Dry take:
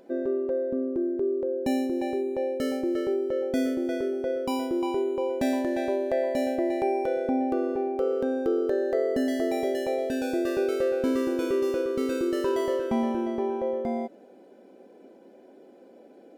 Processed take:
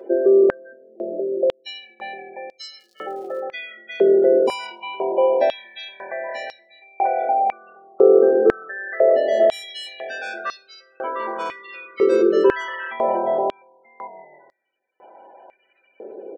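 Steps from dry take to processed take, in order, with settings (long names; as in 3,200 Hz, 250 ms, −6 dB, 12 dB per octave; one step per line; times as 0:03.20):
in parallel at +1 dB: brickwall limiter −26 dBFS, peak gain reduction 11 dB
on the sum: echo with shifted repeats 158 ms, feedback 59%, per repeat −40 Hz, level −8 dB
gate on every frequency bin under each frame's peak −30 dB strong
0:02.78–0:03.39: surface crackle 91 per second → 380 per second −45 dBFS
on a send at −5.5 dB: convolution reverb RT60 0.35 s, pre-delay 5 ms
on the sum: high-pass on a step sequencer 2 Hz 420–4,600 Hz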